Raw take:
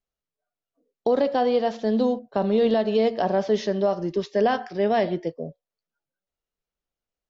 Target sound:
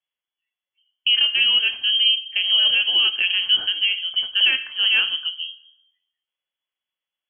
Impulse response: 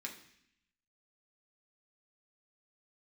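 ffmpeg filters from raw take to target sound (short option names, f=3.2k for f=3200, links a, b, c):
-filter_complex "[0:a]asplit=2[a][b];[1:a]atrim=start_sample=2205,highshelf=f=2.2k:g=-9.5[c];[b][c]afir=irnorm=-1:irlink=0,volume=-1dB[d];[a][d]amix=inputs=2:normalize=0,lowpass=f=2.9k:t=q:w=0.5098,lowpass=f=2.9k:t=q:w=0.6013,lowpass=f=2.9k:t=q:w=0.9,lowpass=f=2.9k:t=q:w=2.563,afreqshift=-3400"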